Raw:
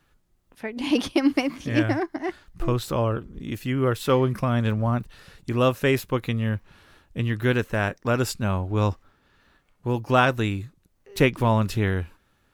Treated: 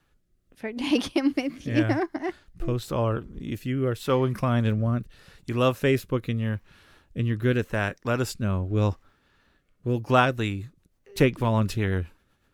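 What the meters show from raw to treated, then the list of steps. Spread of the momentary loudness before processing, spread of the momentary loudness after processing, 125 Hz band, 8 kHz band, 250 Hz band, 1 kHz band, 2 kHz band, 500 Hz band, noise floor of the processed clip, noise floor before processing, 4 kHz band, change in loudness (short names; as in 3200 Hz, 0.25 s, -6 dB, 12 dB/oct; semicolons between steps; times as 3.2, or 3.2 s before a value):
13 LU, 13 LU, -1.0 dB, -3.5 dB, -1.5 dB, -2.5 dB, -3.0 dB, -1.5 dB, -68 dBFS, -66 dBFS, -2.5 dB, -1.5 dB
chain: rotary speaker horn 0.85 Hz, later 8 Hz, at 9.97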